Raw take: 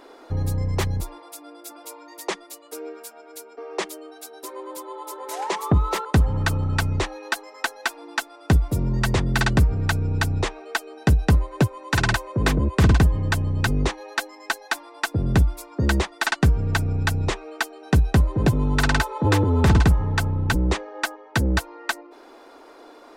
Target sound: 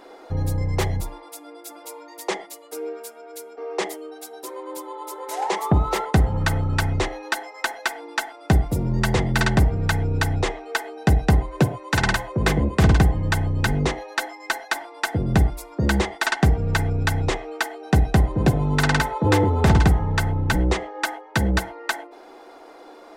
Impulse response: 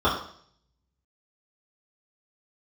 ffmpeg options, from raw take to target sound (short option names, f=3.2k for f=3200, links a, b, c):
-filter_complex "[0:a]asplit=2[a][b];[b]lowshelf=f=190:g=-10[c];[1:a]atrim=start_sample=2205,atrim=end_sample=3528,asetrate=26460,aresample=44100[d];[c][d]afir=irnorm=-1:irlink=0,volume=-25dB[e];[a][e]amix=inputs=2:normalize=0"